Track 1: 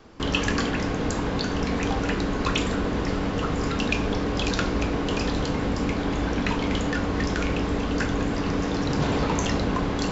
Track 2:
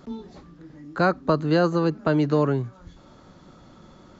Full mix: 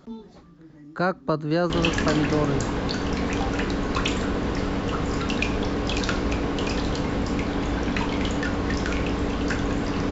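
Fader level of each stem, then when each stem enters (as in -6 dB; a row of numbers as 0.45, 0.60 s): 0.0, -3.0 dB; 1.50, 0.00 s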